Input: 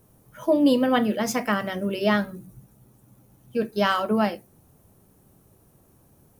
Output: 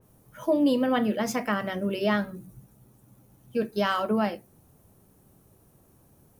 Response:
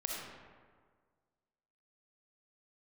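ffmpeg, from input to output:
-filter_complex "[0:a]asplit=2[a][b];[b]alimiter=limit=-16dB:level=0:latency=1:release=122,volume=2dB[c];[a][c]amix=inputs=2:normalize=0,adynamicequalizer=threshold=0.02:dfrequency=3400:dqfactor=0.7:tfrequency=3400:tqfactor=0.7:attack=5:release=100:ratio=0.375:range=2:mode=cutabove:tftype=highshelf,volume=-8.5dB"

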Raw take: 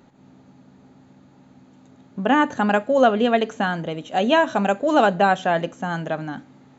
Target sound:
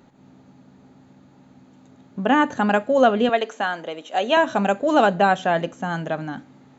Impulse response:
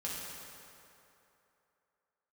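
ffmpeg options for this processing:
-filter_complex "[0:a]asettb=1/sr,asplit=3[a][b][c];[a]atrim=end=3.294[d];[b]atrim=start=3.29:end=4.37,asetpts=PTS-STARTPTS,afade=t=in:d=0.004:c=qsin,afade=t=out:st=1.076:d=0.004:c=qsin,highpass=410[e];[c]atrim=start=4.366[f];[d][e]acrossfade=d=0.004:c1=hsin:c2=qsin[g];[g][f]acrossfade=d=0.004:c1=qsin:c2=hsin"

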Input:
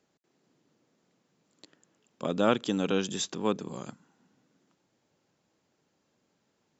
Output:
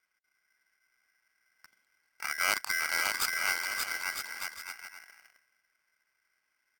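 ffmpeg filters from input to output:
-filter_complex "[0:a]superequalizer=6b=2:12b=0.562:13b=2.24,asplit=2[a][b];[b]adelay=275,lowpass=f=3.4k:p=1,volume=-22dB,asplit=2[c][d];[d]adelay=275,lowpass=f=3.4k:p=1,volume=0.29[e];[c][e]amix=inputs=2:normalize=0[f];[a][f]amix=inputs=2:normalize=0,adynamicsmooth=sensitivity=4:basefreq=2.2k,aemphasis=mode=production:type=50fm,asetrate=38170,aresample=44100,atempo=1.15535,asplit=2[g][h];[h]aecho=0:1:580|957|1202|1361|1465:0.631|0.398|0.251|0.158|0.1[i];[g][i]amix=inputs=2:normalize=0,aeval=exprs='val(0)*sgn(sin(2*PI*1800*n/s))':c=same,volume=-6dB"

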